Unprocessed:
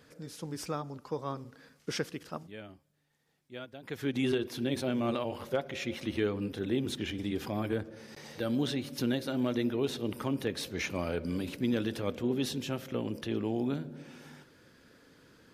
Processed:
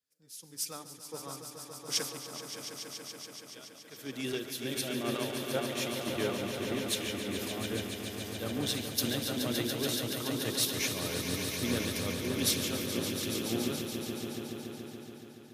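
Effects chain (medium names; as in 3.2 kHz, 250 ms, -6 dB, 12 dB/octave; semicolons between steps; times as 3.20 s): pre-emphasis filter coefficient 0.8; on a send: echo with a slow build-up 142 ms, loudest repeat 5, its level -6.5 dB; on the sum: three bands expanded up and down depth 100%; trim +7.5 dB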